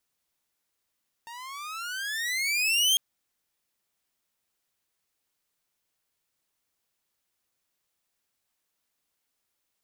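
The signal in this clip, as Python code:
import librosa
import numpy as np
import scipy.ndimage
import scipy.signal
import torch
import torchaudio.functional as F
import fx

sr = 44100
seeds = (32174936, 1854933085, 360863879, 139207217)

y = fx.riser_tone(sr, length_s=1.7, level_db=-16, wave='saw', hz=912.0, rise_st=22.0, swell_db=21.5)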